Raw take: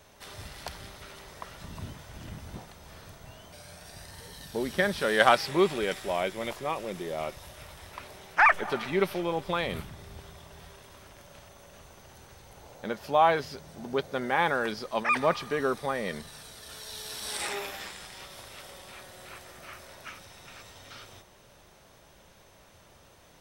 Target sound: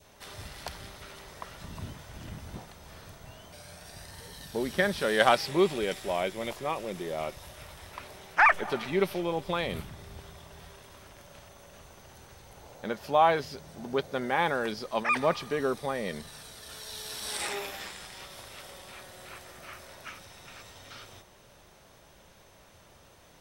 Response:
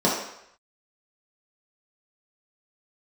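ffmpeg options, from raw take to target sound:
-af "adynamicequalizer=threshold=0.00891:dfrequency=1400:dqfactor=1.1:tfrequency=1400:tqfactor=1.1:attack=5:release=100:ratio=0.375:range=2.5:mode=cutabove:tftype=bell"

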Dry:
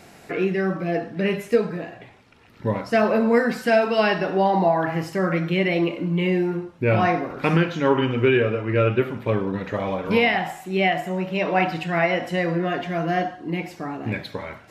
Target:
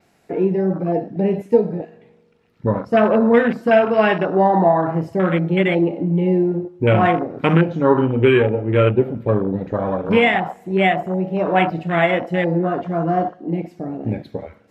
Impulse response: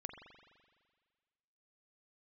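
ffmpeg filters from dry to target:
-filter_complex "[0:a]afwtdn=0.0562,adynamicequalizer=threshold=0.002:dfrequency=9900:dqfactor=1.1:tfrequency=9900:tqfactor=1.1:attack=5:release=100:ratio=0.375:range=2.5:mode=cutabove:tftype=bell,asplit=2[link_01][link_02];[1:a]atrim=start_sample=2205,lowpass=1200[link_03];[link_02][link_03]afir=irnorm=-1:irlink=0,volume=-15.5dB[link_04];[link_01][link_04]amix=inputs=2:normalize=0,volume=4dB"

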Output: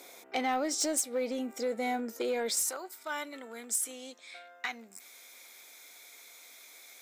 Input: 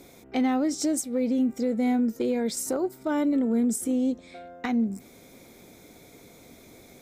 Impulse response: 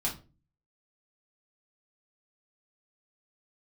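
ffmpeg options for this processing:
-af "asetnsamples=nb_out_samples=441:pad=0,asendcmd='2.62 highpass f 1400',highpass=640,asoftclip=type=tanh:threshold=-25dB,volume=3.5dB"

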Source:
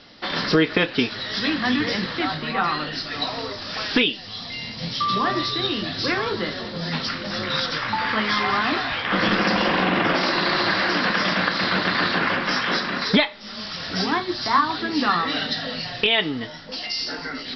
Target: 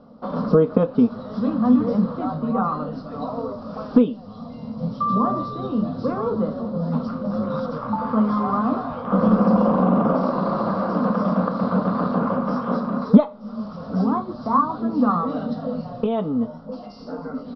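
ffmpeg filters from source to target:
ffmpeg -i in.wav -af "firequalizer=gain_entry='entry(110,0);entry(230,13);entry(340,-8);entry(480,8);entry(820,-1);entry(1200,2);entry(1800,-28);entry(4200,-24);entry(7000,-22)':delay=0.05:min_phase=1,volume=-1dB" out.wav

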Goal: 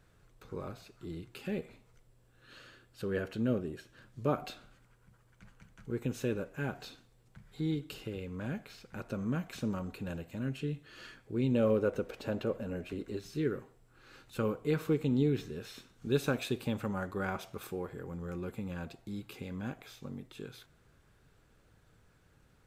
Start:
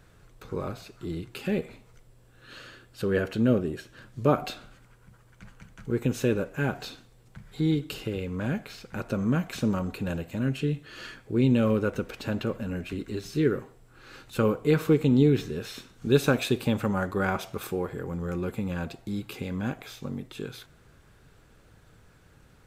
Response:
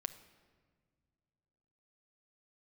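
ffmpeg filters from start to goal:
-filter_complex "[0:a]asettb=1/sr,asplit=3[link_01][link_02][link_03];[link_01]atrim=end=11.544[link_04];[link_02]atrim=start=11.54:end=13.17,asetpts=PTS-STARTPTS,afade=type=in:duration=0.004:curve=qsin,afade=type=out:start_time=1.626:duration=0.004:curve=qsin,equalizer=frequency=530:width_type=o:width=1.3:gain=8[link_05];[link_03]atrim=start=13.166[link_06];[link_04][link_05]acrossfade=duration=0.004:curve1=hsin:curve2=qsin[link_07];[link_07][link_06]acrossfade=duration=0.004:curve1=qsin:curve2=hsin,volume=-8.5dB"

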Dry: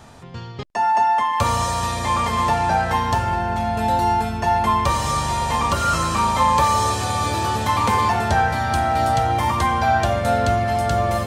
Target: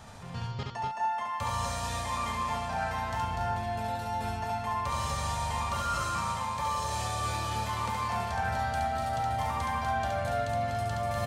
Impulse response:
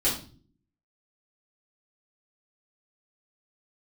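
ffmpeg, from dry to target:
-af "equalizer=frequency=340:width_type=o:width=0.67:gain=-8.5,areverse,acompressor=threshold=-27dB:ratio=10,areverse,aecho=1:1:69.97|244.9|282.8:0.708|0.631|0.316,volume=-4dB"

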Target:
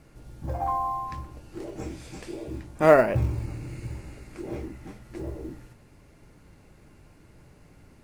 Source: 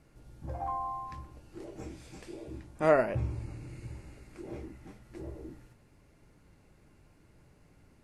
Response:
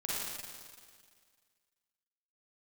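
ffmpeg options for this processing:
-af "acrusher=bits=9:mode=log:mix=0:aa=0.000001,volume=7.5dB"

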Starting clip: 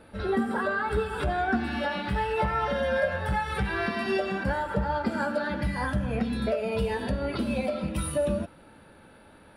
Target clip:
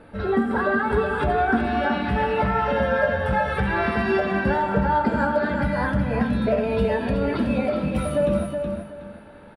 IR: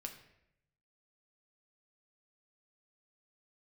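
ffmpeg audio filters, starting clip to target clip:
-filter_complex "[0:a]highshelf=frequency=8100:gain=-8.5,aecho=1:1:371|742|1113:0.501|0.13|0.0339,asplit=2[link_01][link_02];[1:a]atrim=start_sample=2205,asetrate=61740,aresample=44100,lowpass=3100[link_03];[link_02][link_03]afir=irnorm=-1:irlink=0,volume=5.5dB[link_04];[link_01][link_04]amix=inputs=2:normalize=0"

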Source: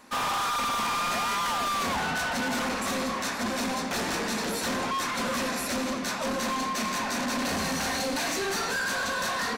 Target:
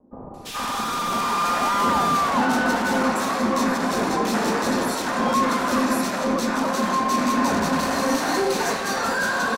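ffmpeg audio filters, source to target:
ffmpeg -i in.wav -filter_complex "[0:a]acrossover=split=180|1500|5600[link_01][link_02][link_03][link_04];[link_02]dynaudnorm=framelen=560:gausssize=3:maxgain=9dB[link_05];[link_01][link_05][link_03][link_04]amix=inputs=4:normalize=0,acrossover=split=590|2300[link_06][link_07][link_08];[link_08]adelay=340[link_09];[link_07]adelay=430[link_10];[link_06][link_10][link_09]amix=inputs=3:normalize=0,volume=2dB" out.wav

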